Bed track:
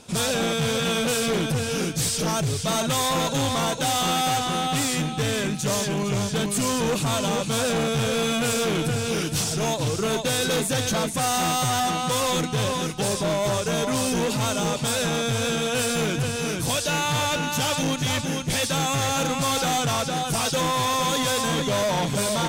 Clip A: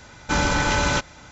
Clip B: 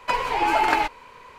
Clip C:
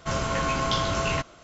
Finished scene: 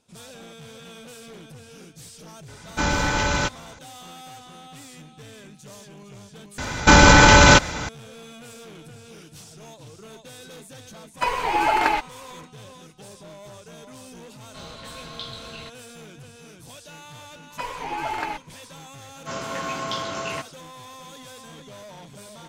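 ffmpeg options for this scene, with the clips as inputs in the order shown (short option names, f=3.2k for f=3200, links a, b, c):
-filter_complex "[1:a]asplit=2[a][b];[2:a]asplit=2[c][d];[3:a]asplit=2[e][f];[0:a]volume=-19.5dB[g];[b]alimiter=level_in=16.5dB:limit=-1dB:release=50:level=0:latency=1[h];[e]lowpass=f=4k:t=q:w=7.7[i];[f]highpass=190[j];[a]atrim=end=1.31,asetpts=PTS-STARTPTS,volume=-1.5dB,afade=t=in:d=0.004:c=hsin,afade=t=out:st=1.306:d=0.004:c=hsin,adelay=2480[k];[h]atrim=end=1.31,asetpts=PTS-STARTPTS,volume=-1dB,afade=t=in:d=0.004:c=hsin,afade=t=out:st=1.306:d=0.004:c=hsin,adelay=290178S[l];[c]atrim=end=1.38,asetpts=PTS-STARTPTS,afade=t=in:d=0.1,afade=t=out:st=1.28:d=0.1,adelay=11130[m];[i]atrim=end=1.43,asetpts=PTS-STARTPTS,volume=-17dB,afade=t=in:d=0.004:c=hsin,afade=t=out:st=1.426:d=0.004:c=hsin,adelay=14480[n];[d]atrim=end=1.38,asetpts=PTS-STARTPTS,volume=-8.5dB,afade=t=in:d=0.004:c=hsin,afade=t=out:st=1.376:d=0.004:c=hsin,adelay=17500[o];[j]atrim=end=1.43,asetpts=PTS-STARTPTS,volume=-3dB,afade=t=in:d=0.1,afade=t=out:st=1.33:d=0.1,adelay=19200[p];[g][k][l][m][n][o][p]amix=inputs=7:normalize=0"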